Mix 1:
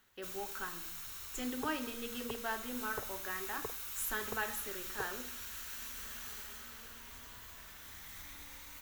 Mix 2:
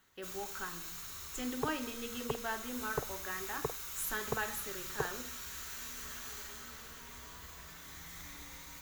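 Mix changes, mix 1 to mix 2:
first sound: send +11.0 dB; second sound +6.5 dB; master: add bell 150 Hz +13 dB 0.25 oct

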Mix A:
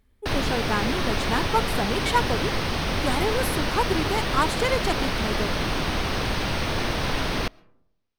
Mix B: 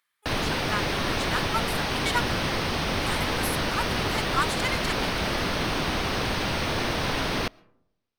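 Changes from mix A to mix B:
speech: add Chebyshev high-pass 1200 Hz, order 3; background: add low shelf 67 Hz -7.5 dB

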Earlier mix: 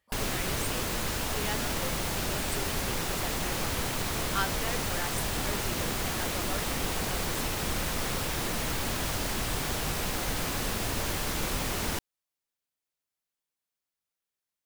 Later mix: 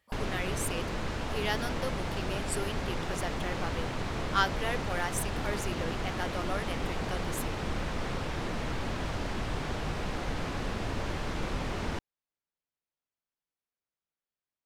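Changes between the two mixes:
speech +4.0 dB; background: add tape spacing loss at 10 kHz 21 dB

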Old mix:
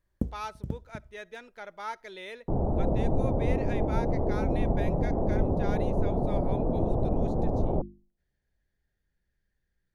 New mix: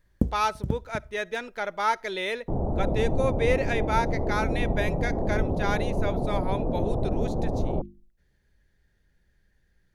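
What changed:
speech +12.0 dB; first sound +6.0 dB

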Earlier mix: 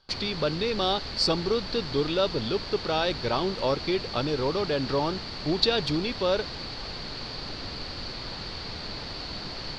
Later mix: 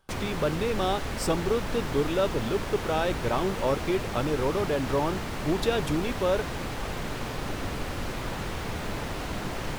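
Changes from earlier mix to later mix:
background +6.5 dB; master: remove synth low-pass 4500 Hz, resonance Q 14

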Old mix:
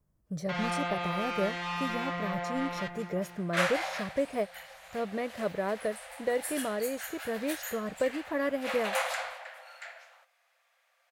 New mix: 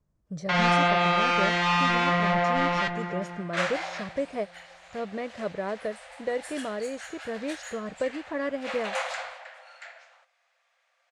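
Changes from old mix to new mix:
first sound +11.0 dB; master: add LPF 7900 Hz 24 dB/oct

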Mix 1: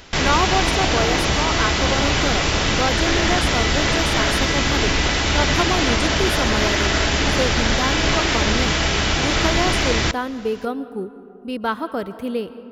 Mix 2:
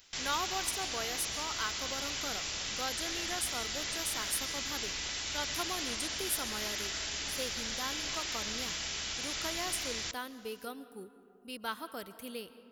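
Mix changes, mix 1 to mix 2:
background -8.5 dB; master: add pre-emphasis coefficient 0.9

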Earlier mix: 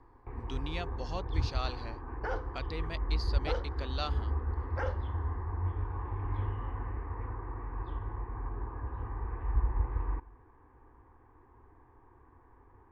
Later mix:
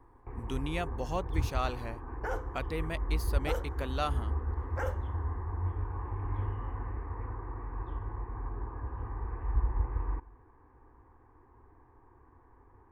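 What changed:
speech +5.5 dB; second sound: remove air absorption 140 m; master: remove synth low-pass 4600 Hz, resonance Q 4.9

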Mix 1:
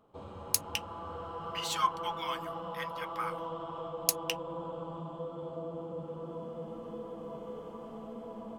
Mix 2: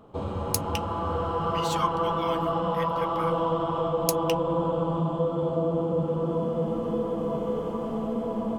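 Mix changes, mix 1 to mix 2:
background +11.0 dB; master: add low shelf 440 Hz +6 dB

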